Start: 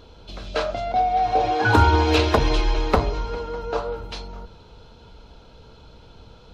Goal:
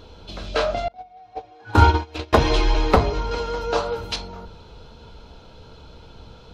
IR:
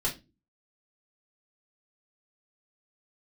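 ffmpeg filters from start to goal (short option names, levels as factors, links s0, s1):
-filter_complex "[0:a]flanger=delay=9.4:depth=5.2:regen=-57:speed=0.72:shape=triangular,asettb=1/sr,asplit=3[s0][s1][s2];[s0]atrim=end=0.884[s3];[s1]atrim=start=0.88:end=2.33,asetpts=PTS-STARTPTS,afade=t=in:d=0.004:c=qsin,afade=t=out:st=1.446:d=0.004:c=qsin,agate=range=0.0355:threshold=0.126:ratio=16:detection=peak[s4];[s2]atrim=start=2.326[s5];[s3][s4]acrossfade=d=0.004:c1=hsin:c2=qsin[s6];[s6][s5]acrossfade=d=0.004:c1=qsin:c2=hsin,asettb=1/sr,asplit=3[s7][s8][s9];[s7]atrim=end=3.314[s10];[s8]atrim=start=3.31:end=4.16,asetpts=PTS-STARTPTS,afade=t=in:d=0.004:c=qsin,afade=t=out:st=0.846:d=0.004:c=qsin,highshelf=f=2800:g=10[s11];[s9]atrim=start=4.156[s12];[s10][s11]acrossfade=d=0.004:c1=hsin:c2=qsin[s13];[s13][s12]acrossfade=d=0.004:c1=qsin:c2=hsin,volume=2.24"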